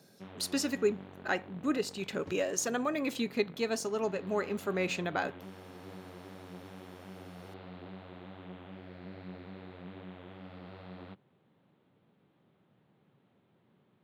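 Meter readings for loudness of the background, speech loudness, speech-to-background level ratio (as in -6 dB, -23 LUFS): -49.5 LUFS, -33.5 LUFS, 16.0 dB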